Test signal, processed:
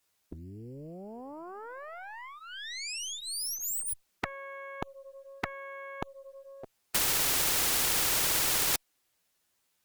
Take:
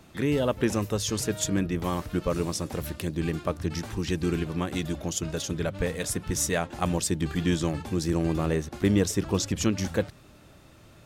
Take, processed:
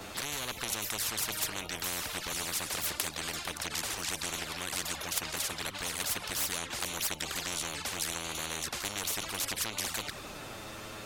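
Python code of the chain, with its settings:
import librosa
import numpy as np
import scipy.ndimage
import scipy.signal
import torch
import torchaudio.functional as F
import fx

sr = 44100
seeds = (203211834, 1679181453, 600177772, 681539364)

y = fx.env_flanger(x, sr, rest_ms=11.2, full_db=-22.5)
y = fx.tube_stage(y, sr, drive_db=17.0, bias=0.4)
y = fx.spectral_comp(y, sr, ratio=10.0)
y = y * 10.0 ** (7.0 / 20.0)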